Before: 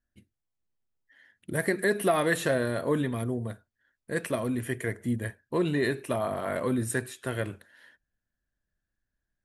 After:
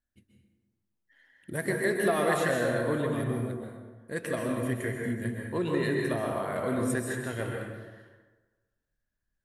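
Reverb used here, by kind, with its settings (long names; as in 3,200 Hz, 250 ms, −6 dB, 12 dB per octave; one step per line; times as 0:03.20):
dense smooth reverb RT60 1.3 s, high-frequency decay 0.55×, pre-delay 115 ms, DRR −0.5 dB
level −4 dB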